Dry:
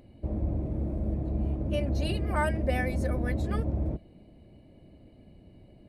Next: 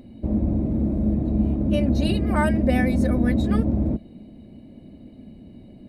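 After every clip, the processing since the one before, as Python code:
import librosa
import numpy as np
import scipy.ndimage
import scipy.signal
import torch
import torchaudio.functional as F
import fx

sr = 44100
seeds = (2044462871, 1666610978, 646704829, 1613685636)

y = fx.small_body(x, sr, hz=(230.0, 3800.0), ring_ms=40, db=12)
y = y * 10.0 ** (4.5 / 20.0)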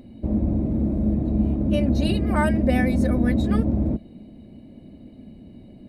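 y = x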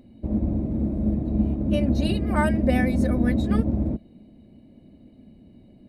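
y = fx.upward_expand(x, sr, threshold_db=-29.0, expansion=1.5)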